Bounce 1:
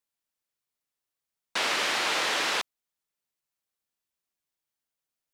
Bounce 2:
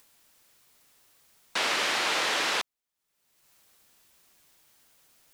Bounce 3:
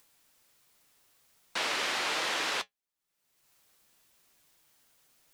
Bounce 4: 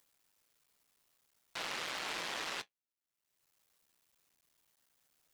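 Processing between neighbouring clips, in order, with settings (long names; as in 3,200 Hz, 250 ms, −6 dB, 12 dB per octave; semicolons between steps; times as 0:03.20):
upward compression, threshold −42 dBFS
flanger 1.3 Hz, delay 5.6 ms, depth 2.6 ms, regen −60%
sub-harmonics by changed cycles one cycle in 3, muted; level −7 dB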